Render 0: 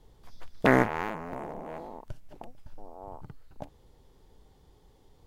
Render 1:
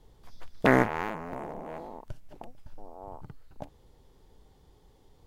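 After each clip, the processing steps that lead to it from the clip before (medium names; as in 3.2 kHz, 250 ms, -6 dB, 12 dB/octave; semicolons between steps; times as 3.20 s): no audible change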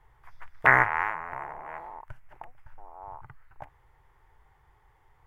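FFT filter 140 Hz 0 dB, 200 Hz -19 dB, 360 Hz -6 dB, 530 Hz -6 dB, 890 Hz +9 dB, 2 kHz +13 dB, 4 kHz -11 dB, 12 kHz -3 dB; trim -3.5 dB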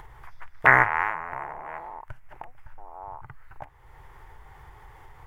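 upward compressor, threshold -38 dBFS; trim +2.5 dB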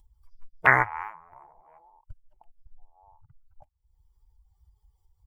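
expander on every frequency bin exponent 2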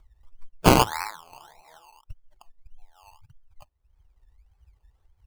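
decimation with a swept rate 19×, swing 60% 1.7 Hz; trim +3.5 dB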